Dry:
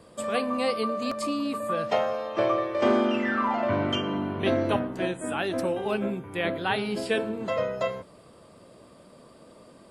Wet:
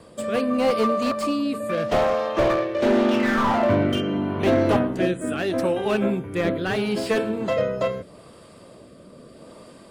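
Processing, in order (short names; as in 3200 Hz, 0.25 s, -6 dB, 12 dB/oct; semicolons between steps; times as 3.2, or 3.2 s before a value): 1.69–3.58 self-modulated delay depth 0.26 ms; rotary speaker horn 0.8 Hz; slew limiter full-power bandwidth 46 Hz; gain +8 dB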